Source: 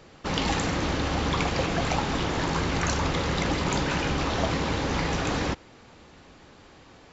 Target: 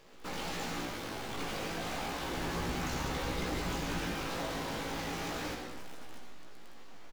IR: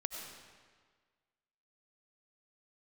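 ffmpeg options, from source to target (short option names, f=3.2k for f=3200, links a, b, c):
-filter_complex "[0:a]asplit=2[a][b];[b]acompressor=threshold=-35dB:ratio=6,volume=0.5dB[c];[a][c]amix=inputs=2:normalize=0,equalizer=f=84:t=o:w=1.3:g=-12,asoftclip=type=tanh:threshold=-27.5dB,asettb=1/sr,asplit=3[d][e][f];[d]atrim=end=2.334[g];[e]atrim=start=2.33:end=4.1,asetpts=PTS-STARTPTS,afade=t=in:d=0.004:c=qsin,afade=t=out:st=1.766:d=0.004:c=qsin,lowshelf=f=170:g=9[h];[f]atrim=start=4.096[i];[g][h]acrossfade=d=0.004:c1=hsin:c2=qsin[j];[j][i]acrossfade=d=0.004:c1=qsin:c2=hsin,asplit=2[k][l];[l]adelay=641.4,volume=-12dB,highshelf=f=4k:g=-14.4[m];[k][m]amix=inputs=2:normalize=0,asplit=3[n][o][p];[n]afade=t=out:st=0.85:d=0.02[q];[o]aeval=exprs='val(0)*sin(2*PI*37*n/s)':c=same,afade=t=in:st=0.85:d=0.02,afade=t=out:st=1.36:d=0.02[r];[p]afade=t=in:st=1.36:d=0.02[s];[q][r][s]amix=inputs=3:normalize=0,acrusher=bits=7:dc=4:mix=0:aa=0.000001[t];[1:a]atrim=start_sample=2205,afade=t=out:st=0.43:d=0.01,atrim=end_sample=19404,asetrate=52920,aresample=44100[u];[t][u]afir=irnorm=-1:irlink=0,flanger=delay=16:depth=2.2:speed=0.33,volume=-2.5dB"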